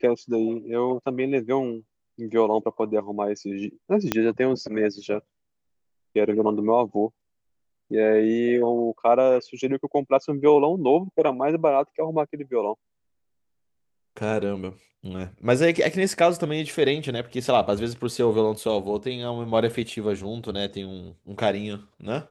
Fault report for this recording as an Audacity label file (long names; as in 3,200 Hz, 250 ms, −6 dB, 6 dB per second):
4.120000	4.120000	click −6 dBFS